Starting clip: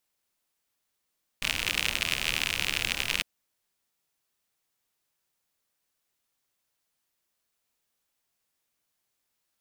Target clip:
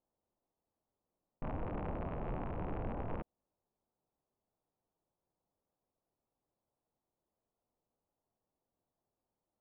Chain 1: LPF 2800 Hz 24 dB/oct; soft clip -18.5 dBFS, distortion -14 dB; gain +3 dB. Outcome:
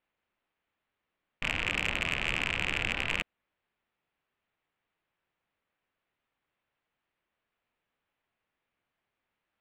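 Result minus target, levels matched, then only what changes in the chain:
2000 Hz band +14.5 dB
change: LPF 880 Hz 24 dB/oct

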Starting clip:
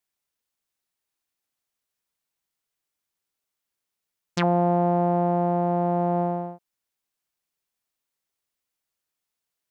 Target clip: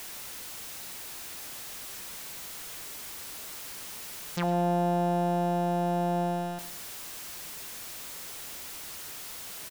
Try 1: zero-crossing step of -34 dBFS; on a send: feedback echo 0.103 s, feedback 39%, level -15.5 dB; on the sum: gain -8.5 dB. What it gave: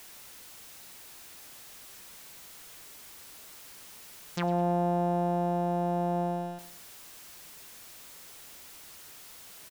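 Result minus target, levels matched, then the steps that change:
zero-crossing step: distortion -7 dB
change: zero-crossing step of -26 dBFS

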